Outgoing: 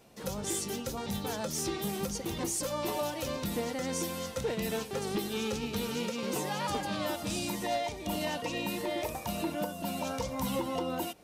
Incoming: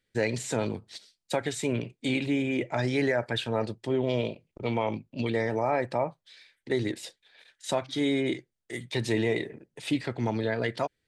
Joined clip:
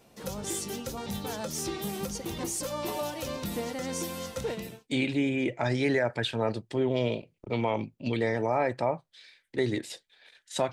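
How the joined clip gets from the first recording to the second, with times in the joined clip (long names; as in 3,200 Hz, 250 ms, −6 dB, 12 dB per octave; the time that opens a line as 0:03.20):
outgoing
0:04.71: continue with incoming from 0:01.84, crossfade 0.38 s quadratic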